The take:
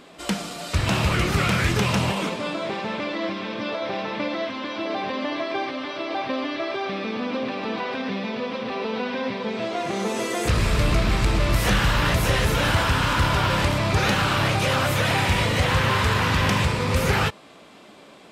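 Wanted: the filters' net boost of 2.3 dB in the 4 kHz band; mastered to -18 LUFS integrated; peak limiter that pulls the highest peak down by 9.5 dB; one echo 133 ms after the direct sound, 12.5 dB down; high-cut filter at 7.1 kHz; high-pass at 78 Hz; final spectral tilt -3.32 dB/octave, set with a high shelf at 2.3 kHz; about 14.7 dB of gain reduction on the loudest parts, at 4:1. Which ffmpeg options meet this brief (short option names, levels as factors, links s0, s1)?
-af "highpass=78,lowpass=7100,highshelf=f=2300:g=-4,equalizer=f=4000:t=o:g=7,acompressor=threshold=0.0158:ratio=4,alimiter=level_in=1.88:limit=0.0631:level=0:latency=1,volume=0.531,aecho=1:1:133:0.237,volume=10"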